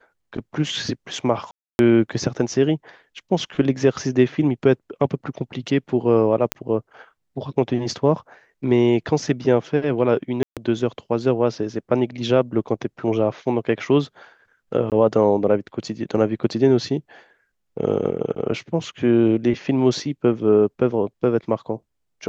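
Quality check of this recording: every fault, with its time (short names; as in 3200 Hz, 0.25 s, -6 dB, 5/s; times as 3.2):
1.51–1.79 gap 0.281 s
6.52 pop -4 dBFS
10.43–10.57 gap 0.137 s
14.9–14.92 gap 18 ms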